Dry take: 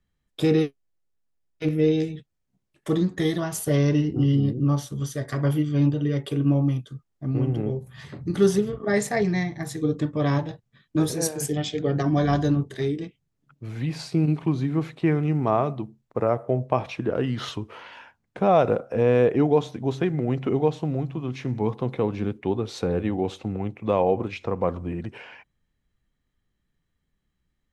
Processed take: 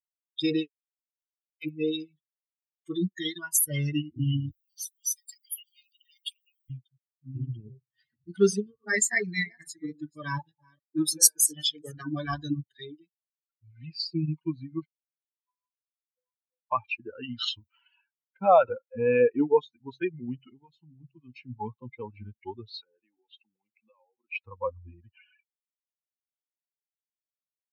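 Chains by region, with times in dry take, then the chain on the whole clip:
4.51–6.7 steep high-pass 2200 Hz + high shelf 7100 Hz +11 dB
7.9–11.99 reverse delay 0.289 s, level -10 dB + HPF 90 Hz
14.85–16.71 band shelf 2100 Hz -14 dB 1.3 oct + level quantiser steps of 14 dB + resonator 500 Hz, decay 0.42 s, mix 100%
17.38–17.82 high shelf 6600 Hz +5.5 dB + doubler 23 ms -12 dB
20.44–21.01 compressor 2:1, threshold -26 dBFS + bell 530 Hz -11.5 dB 0.47 oct
22.69–24.35 BPF 240–3400 Hz + high shelf 2600 Hz +5.5 dB + compressor 4:1, threshold -34 dBFS
whole clip: per-bin expansion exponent 3; tilt +3 dB/oct; gain +5.5 dB

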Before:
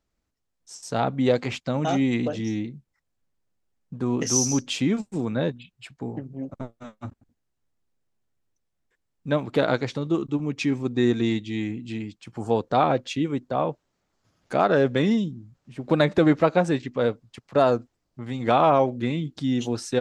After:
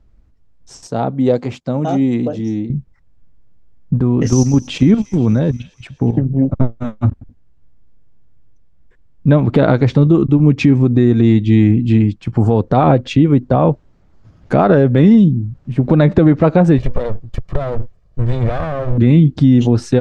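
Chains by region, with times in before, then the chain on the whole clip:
0.87–2.7 HPF 770 Hz 6 dB/oct + bell 2100 Hz -13 dB 2.6 oct
3.98–6.18 level quantiser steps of 11 dB + thin delay 0.24 s, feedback 66%, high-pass 1900 Hz, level -19 dB
16.78–18.98 minimum comb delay 1.7 ms + compressor 12:1, threshold -32 dBFS
whole clip: RIAA curve playback; compressor, threshold -17 dBFS; maximiser +13.5 dB; gain -1 dB

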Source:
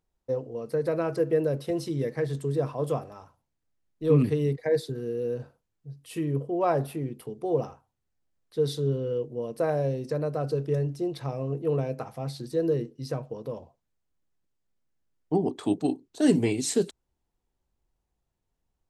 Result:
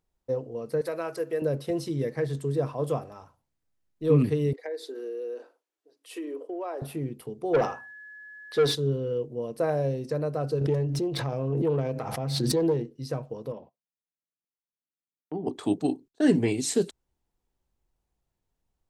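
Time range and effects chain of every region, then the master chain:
0.81–1.42 HPF 730 Hz 6 dB/oct + high shelf 9100 Hz +8 dB + mismatched tape noise reduction encoder only
4.53–6.82 steep high-pass 300 Hz 48 dB/oct + compressor 5:1, threshold -31 dBFS + high shelf 10000 Hz -6.5 dB
7.53–8.74 notches 60/120/180/240/300/360 Hz + overdrive pedal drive 21 dB, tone 3700 Hz, clips at -13.5 dBFS + whine 1700 Hz -43 dBFS
10.61–12.91 self-modulated delay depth 0.12 ms + high shelf 6200 Hz -6.5 dB + backwards sustainer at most 23 dB/s
13.52–15.47 gate -56 dBFS, range -17 dB + Chebyshev band-pass 180–2900 Hz + compressor 2:1, threshold -35 dBFS
16.08–16.48 LPF 3800 Hz 6 dB/oct + gate -46 dBFS, range -21 dB + bell 1700 Hz +6.5 dB 0.33 oct
whole clip: dry

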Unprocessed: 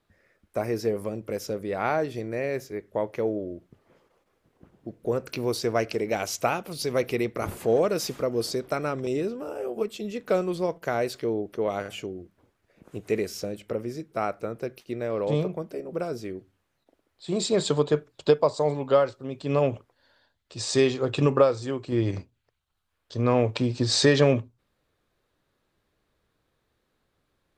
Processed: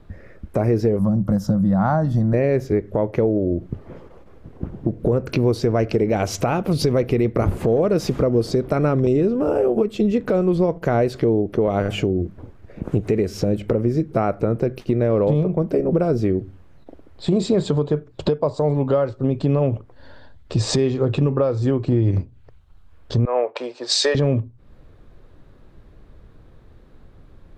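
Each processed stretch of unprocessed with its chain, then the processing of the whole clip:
0.99–2.34 bell 190 Hz +14 dB 0.38 oct + fixed phaser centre 990 Hz, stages 4
23.25–24.15 HPF 510 Hz 24 dB/oct + three-band expander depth 100%
whole clip: tilt -3.5 dB/oct; compressor 6:1, threshold -32 dBFS; maximiser +24.5 dB; gain -8 dB

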